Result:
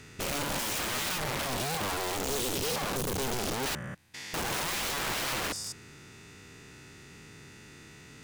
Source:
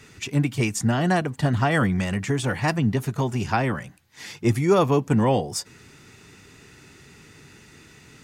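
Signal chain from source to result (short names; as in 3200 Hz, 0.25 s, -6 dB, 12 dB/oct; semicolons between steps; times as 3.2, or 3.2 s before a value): stepped spectrum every 0.2 s; 1.46–3.66 brick-wall FIR band-stop 260–2800 Hz; wrapped overs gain 27.5 dB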